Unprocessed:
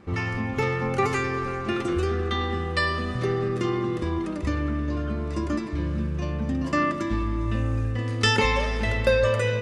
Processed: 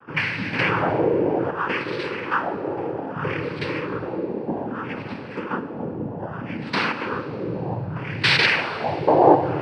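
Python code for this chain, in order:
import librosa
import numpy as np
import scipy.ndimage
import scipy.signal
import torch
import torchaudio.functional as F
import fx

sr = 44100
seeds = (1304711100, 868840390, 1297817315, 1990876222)

y = fx.filter_lfo_lowpass(x, sr, shape='sine', hz=0.63, low_hz=440.0, high_hz=2600.0, q=5.9)
y = fx.noise_vocoder(y, sr, seeds[0], bands=8)
y = fx.rev_schroeder(y, sr, rt60_s=2.6, comb_ms=29, drr_db=13.0)
y = fx.env_flatten(y, sr, amount_pct=50, at=(0.53, 1.51))
y = y * 10.0 ** (-2.5 / 20.0)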